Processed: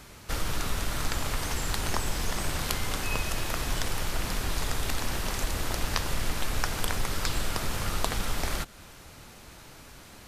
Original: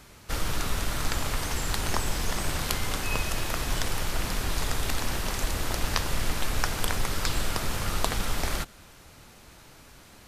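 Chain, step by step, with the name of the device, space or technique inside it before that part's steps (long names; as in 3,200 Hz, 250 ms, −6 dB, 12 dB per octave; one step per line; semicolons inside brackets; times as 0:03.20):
parallel compression (in parallel at 0 dB: downward compressor, threshold −35 dBFS, peak gain reduction 14.5 dB)
on the sum: level −3.5 dB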